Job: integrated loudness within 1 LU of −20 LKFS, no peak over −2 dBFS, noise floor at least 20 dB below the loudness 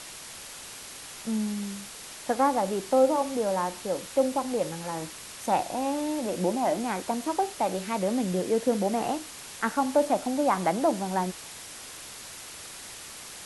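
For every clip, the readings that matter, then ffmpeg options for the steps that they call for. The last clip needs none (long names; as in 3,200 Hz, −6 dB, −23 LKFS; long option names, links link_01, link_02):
background noise floor −43 dBFS; target noise floor −48 dBFS; integrated loudness −28.0 LKFS; sample peak −11.0 dBFS; target loudness −20.0 LKFS
→ -af "afftdn=noise_reduction=6:noise_floor=-43"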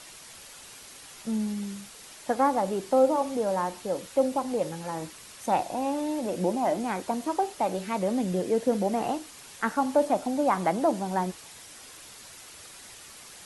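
background noise floor −48 dBFS; integrated loudness −28.0 LKFS; sample peak −11.0 dBFS; target loudness −20.0 LKFS
→ -af "volume=8dB"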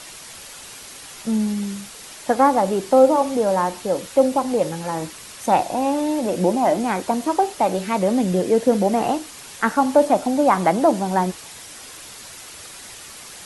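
integrated loudness −20.0 LKFS; sample peak −3.0 dBFS; background noise floor −40 dBFS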